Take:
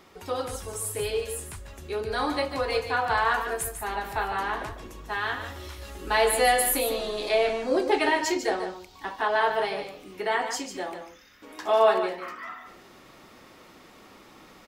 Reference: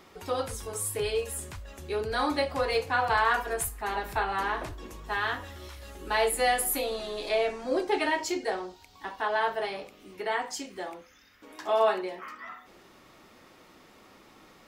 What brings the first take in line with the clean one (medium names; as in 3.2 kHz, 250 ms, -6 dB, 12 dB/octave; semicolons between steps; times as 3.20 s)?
inverse comb 147 ms -8.5 dB; trim 0 dB, from 5.41 s -3.5 dB